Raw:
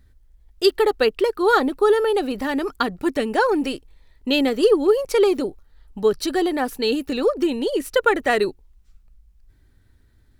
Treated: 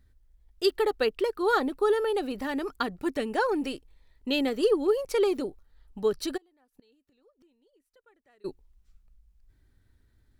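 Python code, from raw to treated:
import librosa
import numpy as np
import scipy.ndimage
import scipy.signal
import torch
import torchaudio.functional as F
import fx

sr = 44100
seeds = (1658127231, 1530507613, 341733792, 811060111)

y = fx.gate_flip(x, sr, shuts_db=-23.0, range_db=-37, at=(6.36, 8.44), fade=0.02)
y = y * 10.0 ** (-7.5 / 20.0)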